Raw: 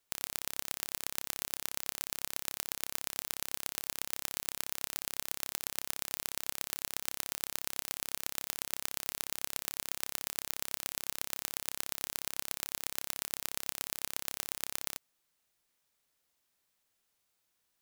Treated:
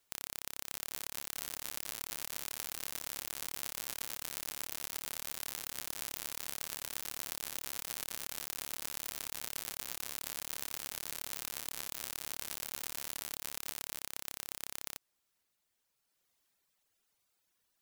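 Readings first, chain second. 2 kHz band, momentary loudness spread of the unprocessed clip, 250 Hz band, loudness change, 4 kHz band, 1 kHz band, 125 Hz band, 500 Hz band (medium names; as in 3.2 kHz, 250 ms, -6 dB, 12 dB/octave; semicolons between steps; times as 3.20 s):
-3.0 dB, 1 LU, -3.0 dB, -3.0 dB, -3.0 dB, -3.0 dB, -3.0 dB, -3.0 dB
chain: reverb removal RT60 1.8 s; saturation -14 dBFS, distortion -9 dB; ever faster or slower copies 644 ms, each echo +2 st, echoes 2; trim +3 dB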